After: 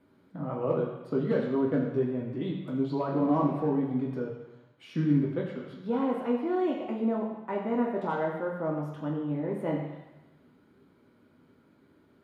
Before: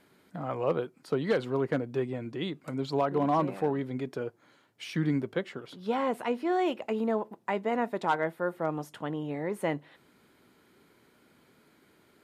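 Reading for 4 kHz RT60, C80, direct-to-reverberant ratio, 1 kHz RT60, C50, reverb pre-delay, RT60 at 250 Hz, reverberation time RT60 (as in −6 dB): 1.1 s, 6.0 dB, −2.5 dB, 1.1 s, 4.5 dB, 3 ms, 0.95 s, 1.1 s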